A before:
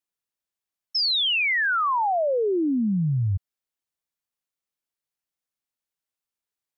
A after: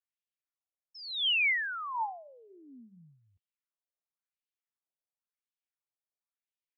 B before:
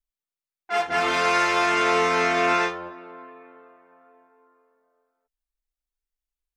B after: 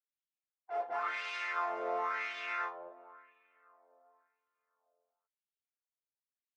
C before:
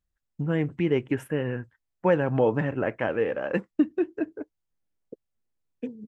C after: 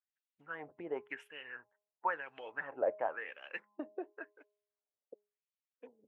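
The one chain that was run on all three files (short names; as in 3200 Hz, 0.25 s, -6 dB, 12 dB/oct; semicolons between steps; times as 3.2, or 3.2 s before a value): harmonic-percussive split percussive +8 dB; dynamic EQ 2800 Hz, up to -4 dB, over -32 dBFS, Q 1.3; de-hum 207.3 Hz, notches 5; wah 0.95 Hz 580–3000 Hz, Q 2.7; thirty-one-band EQ 125 Hz -5 dB, 200 Hz -10 dB, 315 Hz -3 dB; gain -8 dB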